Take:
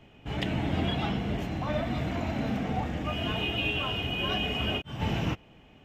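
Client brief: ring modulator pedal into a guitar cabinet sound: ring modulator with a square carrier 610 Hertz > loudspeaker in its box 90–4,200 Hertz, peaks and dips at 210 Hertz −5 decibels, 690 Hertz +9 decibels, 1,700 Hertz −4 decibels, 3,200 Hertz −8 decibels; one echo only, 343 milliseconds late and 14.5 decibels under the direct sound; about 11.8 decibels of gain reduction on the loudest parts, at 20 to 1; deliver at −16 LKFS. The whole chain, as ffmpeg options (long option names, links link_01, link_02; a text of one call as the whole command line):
ffmpeg -i in.wav -af "acompressor=threshold=-36dB:ratio=20,aecho=1:1:343:0.188,aeval=exprs='val(0)*sgn(sin(2*PI*610*n/s))':channel_layout=same,highpass=90,equalizer=frequency=210:width_type=q:width=4:gain=-5,equalizer=frequency=690:width_type=q:width=4:gain=9,equalizer=frequency=1700:width_type=q:width=4:gain=-4,equalizer=frequency=3200:width_type=q:width=4:gain=-8,lowpass=frequency=4200:width=0.5412,lowpass=frequency=4200:width=1.3066,volume=22dB" out.wav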